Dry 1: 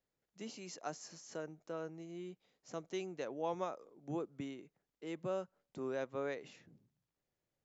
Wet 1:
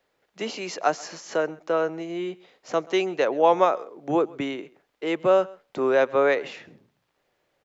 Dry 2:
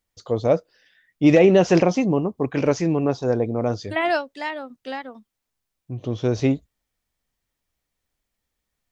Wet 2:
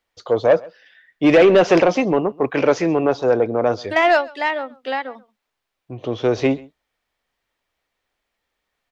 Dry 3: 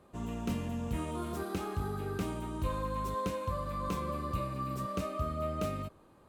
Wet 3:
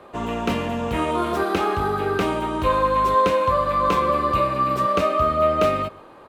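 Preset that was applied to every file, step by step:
three-way crossover with the lows and the highs turned down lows −13 dB, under 350 Hz, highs −13 dB, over 4,100 Hz
soft clipping −15 dBFS
single-tap delay 132 ms −23 dB
normalise the peak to −6 dBFS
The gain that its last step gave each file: +21.0, +8.5, +18.5 decibels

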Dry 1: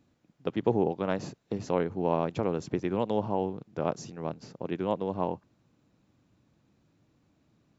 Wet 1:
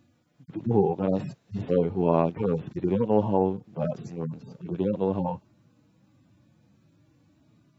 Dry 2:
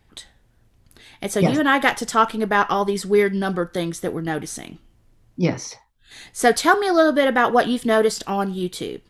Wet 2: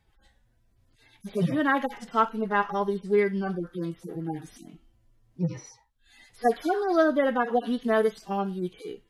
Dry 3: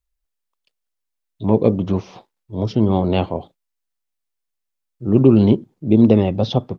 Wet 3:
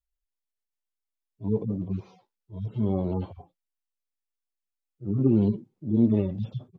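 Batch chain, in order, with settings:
harmonic-percussive split with one part muted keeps harmonic
loudness normalisation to −27 LKFS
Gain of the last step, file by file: +7.5, −5.5, −8.5 decibels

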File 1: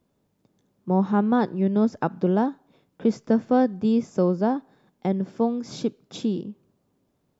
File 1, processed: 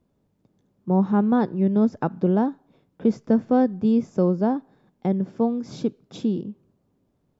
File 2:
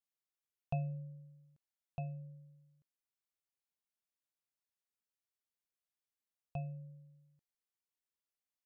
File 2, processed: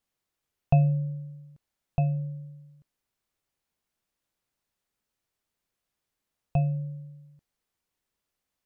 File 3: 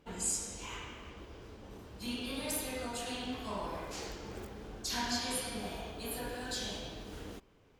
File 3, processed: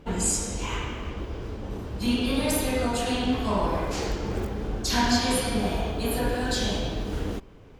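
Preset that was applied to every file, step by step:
spectral tilt −1.5 dB per octave
normalise the peak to −9 dBFS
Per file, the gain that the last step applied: −1.5, +12.5, +12.0 decibels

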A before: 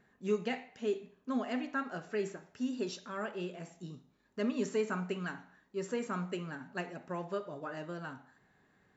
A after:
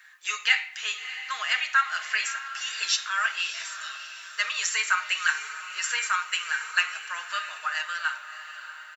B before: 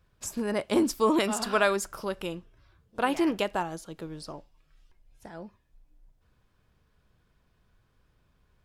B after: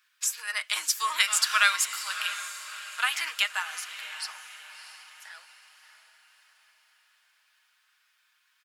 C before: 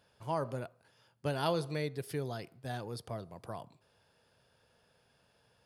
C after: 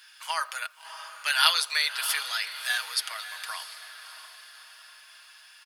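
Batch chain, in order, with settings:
high-pass filter 1,500 Hz 24 dB per octave
comb filter 6.4 ms, depth 47%
on a send: feedback delay with all-pass diffusion 645 ms, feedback 46%, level −11.5 dB
on the sum: loudness normalisation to −27 LKFS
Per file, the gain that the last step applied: +20.5, +9.0, +20.5 decibels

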